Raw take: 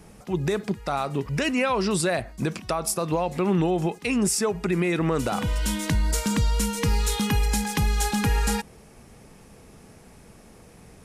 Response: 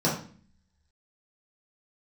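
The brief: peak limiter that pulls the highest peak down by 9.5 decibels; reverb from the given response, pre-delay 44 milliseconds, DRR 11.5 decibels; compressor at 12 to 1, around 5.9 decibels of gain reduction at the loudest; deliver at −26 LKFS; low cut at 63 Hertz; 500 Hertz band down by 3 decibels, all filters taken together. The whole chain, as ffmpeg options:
-filter_complex "[0:a]highpass=63,equalizer=frequency=500:width_type=o:gain=-4,acompressor=threshold=-26dB:ratio=12,alimiter=limit=-24dB:level=0:latency=1,asplit=2[link_01][link_02];[1:a]atrim=start_sample=2205,adelay=44[link_03];[link_02][link_03]afir=irnorm=-1:irlink=0,volume=-24.5dB[link_04];[link_01][link_04]amix=inputs=2:normalize=0,volume=6dB"

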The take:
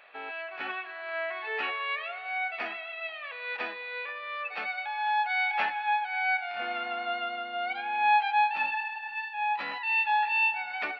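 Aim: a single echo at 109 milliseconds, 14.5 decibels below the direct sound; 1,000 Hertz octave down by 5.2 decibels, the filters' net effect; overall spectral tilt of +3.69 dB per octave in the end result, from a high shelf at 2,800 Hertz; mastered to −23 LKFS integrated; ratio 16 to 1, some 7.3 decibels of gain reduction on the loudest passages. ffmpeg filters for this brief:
ffmpeg -i in.wav -af "equalizer=frequency=1000:width_type=o:gain=-7.5,highshelf=frequency=2800:gain=6,acompressor=threshold=-28dB:ratio=16,aecho=1:1:109:0.188,volume=9.5dB" out.wav

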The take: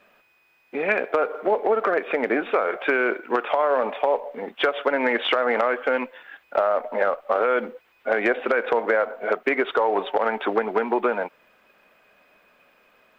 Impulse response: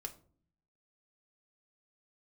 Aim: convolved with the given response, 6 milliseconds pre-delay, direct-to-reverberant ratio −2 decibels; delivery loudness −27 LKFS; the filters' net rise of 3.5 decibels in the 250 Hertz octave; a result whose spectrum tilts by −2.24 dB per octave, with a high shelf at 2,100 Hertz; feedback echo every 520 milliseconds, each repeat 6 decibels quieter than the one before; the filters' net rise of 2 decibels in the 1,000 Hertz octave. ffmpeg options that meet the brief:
-filter_complex "[0:a]equalizer=frequency=250:width_type=o:gain=4.5,equalizer=frequency=1000:width_type=o:gain=4,highshelf=frequency=2100:gain=-6.5,aecho=1:1:520|1040|1560|2080|2600|3120:0.501|0.251|0.125|0.0626|0.0313|0.0157,asplit=2[link_01][link_02];[1:a]atrim=start_sample=2205,adelay=6[link_03];[link_02][link_03]afir=irnorm=-1:irlink=0,volume=5dB[link_04];[link_01][link_04]amix=inputs=2:normalize=0,volume=-10.5dB"

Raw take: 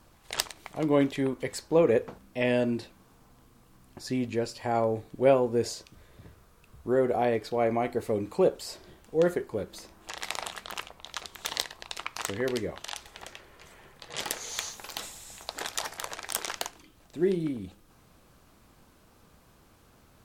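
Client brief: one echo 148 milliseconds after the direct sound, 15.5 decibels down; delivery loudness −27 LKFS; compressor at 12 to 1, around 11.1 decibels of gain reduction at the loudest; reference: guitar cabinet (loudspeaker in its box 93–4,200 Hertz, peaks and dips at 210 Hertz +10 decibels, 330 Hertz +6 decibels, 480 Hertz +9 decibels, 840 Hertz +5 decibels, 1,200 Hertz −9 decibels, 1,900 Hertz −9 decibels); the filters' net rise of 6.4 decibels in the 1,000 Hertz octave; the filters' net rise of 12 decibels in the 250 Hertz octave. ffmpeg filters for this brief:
ffmpeg -i in.wav -af "equalizer=frequency=250:width_type=o:gain=7.5,equalizer=frequency=1000:width_type=o:gain=5.5,acompressor=threshold=-24dB:ratio=12,highpass=93,equalizer=frequency=210:width_type=q:width=4:gain=10,equalizer=frequency=330:width_type=q:width=4:gain=6,equalizer=frequency=480:width_type=q:width=4:gain=9,equalizer=frequency=840:width_type=q:width=4:gain=5,equalizer=frequency=1200:width_type=q:width=4:gain=-9,equalizer=frequency=1900:width_type=q:width=4:gain=-9,lowpass=frequency=4200:width=0.5412,lowpass=frequency=4200:width=1.3066,aecho=1:1:148:0.168,volume=-0.5dB" out.wav

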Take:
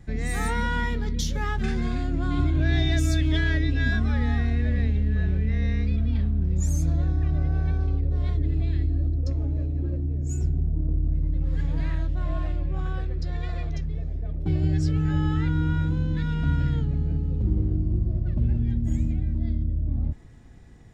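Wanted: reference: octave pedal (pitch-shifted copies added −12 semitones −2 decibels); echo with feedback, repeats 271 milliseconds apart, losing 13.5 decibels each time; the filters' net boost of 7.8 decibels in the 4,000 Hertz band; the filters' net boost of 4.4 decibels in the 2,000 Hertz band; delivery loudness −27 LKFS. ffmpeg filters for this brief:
ffmpeg -i in.wav -filter_complex "[0:a]equalizer=frequency=2000:width_type=o:gain=4,equalizer=frequency=4000:width_type=o:gain=8,aecho=1:1:271|542:0.211|0.0444,asplit=2[link_01][link_02];[link_02]asetrate=22050,aresample=44100,atempo=2,volume=-2dB[link_03];[link_01][link_03]amix=inputs=2:normalize=0,volume=-3.5dB" out.wav

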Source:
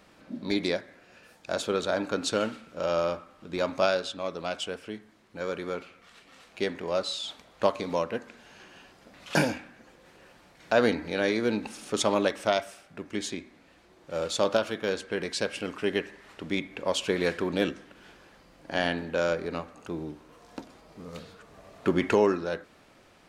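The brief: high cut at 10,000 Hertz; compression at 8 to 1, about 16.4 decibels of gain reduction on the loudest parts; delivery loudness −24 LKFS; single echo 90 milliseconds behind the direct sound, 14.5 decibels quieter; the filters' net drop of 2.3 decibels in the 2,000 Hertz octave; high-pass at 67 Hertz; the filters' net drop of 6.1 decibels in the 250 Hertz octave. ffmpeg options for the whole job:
ffmpeg -i in.wav -af "highpass=67,lowpass=10000,equalizer=frequency=250:width_type=o:gain=-8.5,equalizer=frequency=2000:width_type=o:gain=-3,acompressor=threshold=-38dB:ratio=8,aecho=1:1:90:0.188,volume=19.5dB" out.wav

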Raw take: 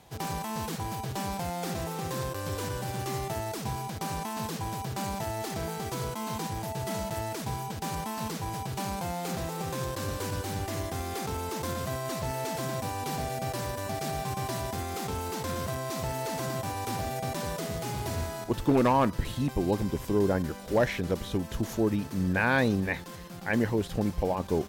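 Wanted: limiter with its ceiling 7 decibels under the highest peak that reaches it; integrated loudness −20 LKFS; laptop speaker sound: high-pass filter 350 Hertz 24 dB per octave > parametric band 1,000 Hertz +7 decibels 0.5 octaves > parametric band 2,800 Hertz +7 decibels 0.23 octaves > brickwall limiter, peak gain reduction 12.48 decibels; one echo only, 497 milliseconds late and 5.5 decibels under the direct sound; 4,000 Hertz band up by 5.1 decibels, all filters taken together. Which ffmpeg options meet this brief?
ffmpeg -i in.wav -af "equalizer=frequency=4000:width_type=o:gain=4.5,alimiter=limit=-20dB:level=0:latency=1,highpass=frequency=350:width=0.5412,highpass=frequency=350:width=1.3066,equalizer=frequency=1000:width_type=o:width=0.5:gain=7,equalizer=frequency=2800:width_type=o:width=0.23:gain=7,aecho=1:1:497:0.531,volume=15dB,alimiter=limit=-11dB:level=0:latency=1" out.wav

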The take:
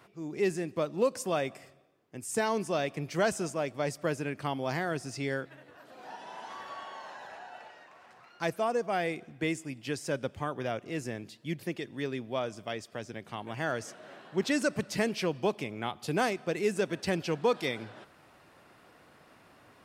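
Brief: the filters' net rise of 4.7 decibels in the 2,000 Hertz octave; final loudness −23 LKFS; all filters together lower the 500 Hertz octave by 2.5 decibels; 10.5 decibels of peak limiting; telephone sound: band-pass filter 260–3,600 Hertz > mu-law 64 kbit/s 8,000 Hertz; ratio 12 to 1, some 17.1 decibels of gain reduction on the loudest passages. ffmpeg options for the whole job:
ffmpeg -i in.wav -af "equalizer=frequency=500:width_type=o:gain=-3,equalizer=frequency=2000:width_type=o:gain=6.5,acompressor=threshold=-40dB:ratio=12,alimiter=level_in=11.5dB:limit=-24dB:level=0:latency=1,volume=-11.5dB,highpass=260,lowpass=3600,volume=26dB" -ar 8000 -c:a pcm_mulaw out.wav

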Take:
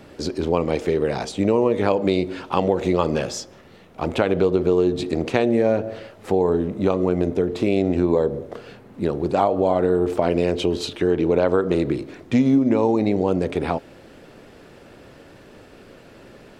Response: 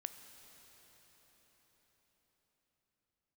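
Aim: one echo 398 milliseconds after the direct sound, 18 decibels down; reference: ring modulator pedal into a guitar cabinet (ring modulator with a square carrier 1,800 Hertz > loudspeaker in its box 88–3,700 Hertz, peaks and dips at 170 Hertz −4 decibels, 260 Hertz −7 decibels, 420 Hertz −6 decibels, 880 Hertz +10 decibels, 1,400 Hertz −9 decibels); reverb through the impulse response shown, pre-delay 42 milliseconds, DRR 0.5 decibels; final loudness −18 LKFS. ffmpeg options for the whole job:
-filter_complex "[0:a]aecho=1:1:398:0.126,asplit=2[link_01][link_02];[1:a]atrim=start_sample=2205,adelay=42[link_03];[link_02][link_03]afir=irnorm=-1:irlink=0,volume=2.5dB[link_04];[link_01][link_04]amix=inputs=2:normalize=0,aeval=exprs='val(0)*sgn(sin(2*PI*1800*n/s))':channel_layout=same,highpass=88,equalizer=frequency=170:width_type=q:width=4:gain=-4,equalizer=frequency=260:width_type=q:width=4:gain=-7,equalizer=frequency=420:width_type=q:width=4:gain=-6,equalizer=frequency=880:width_type=q:width=4:gain=10,equalizer=frequency=1400:width_type=q:width=4:gain=-9,lowpass=frequency=3700:width=0.5412,lowpass=frequency=3700:width=1.3066,volume=0.5dB"

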